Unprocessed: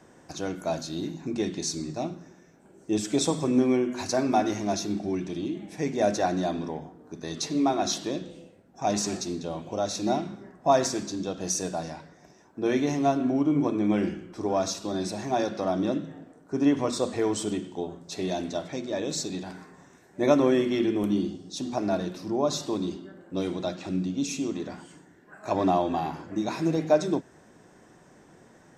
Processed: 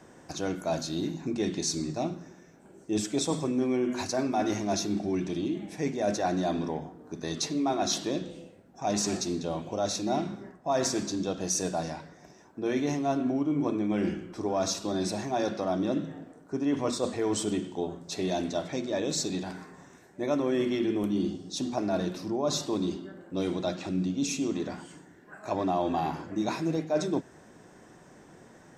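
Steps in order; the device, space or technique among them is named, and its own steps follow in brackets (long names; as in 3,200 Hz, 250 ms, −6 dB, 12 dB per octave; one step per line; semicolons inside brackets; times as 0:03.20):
compression on the reversed sound (reversed playback; downward compressor 5 to 1, threshold −26 dBFS, peak gain reduction 10.5 dB; reversed playback)
level +1.5 dB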